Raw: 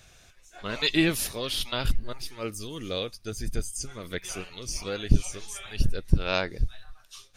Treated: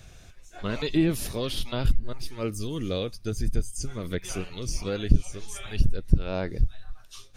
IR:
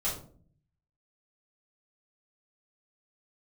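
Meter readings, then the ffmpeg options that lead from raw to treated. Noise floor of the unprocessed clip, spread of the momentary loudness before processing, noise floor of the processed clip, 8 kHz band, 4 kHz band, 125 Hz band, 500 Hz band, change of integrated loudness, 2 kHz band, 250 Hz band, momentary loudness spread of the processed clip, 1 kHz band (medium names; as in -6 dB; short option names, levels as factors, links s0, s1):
-56 dBFS, 12 LU, -49 dBFS, -3.0 dB, -5.5 dB, +2.5 dB, +1.5 dB, 0.0 dB, -6.5 dB, +2.0 dB, 12 LU, -2.5 dB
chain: -filter_complex "[0:a]lowshelf=f=450:g=10,acrossover=split=1000[s0][s1];[s1]alimiter=limit=0.0794:level=0:latency=1:release=62[s2];[s0][s2]amix=inputs=2:normalize=0,acompressor=threshold=0.0398:ratio=1.5"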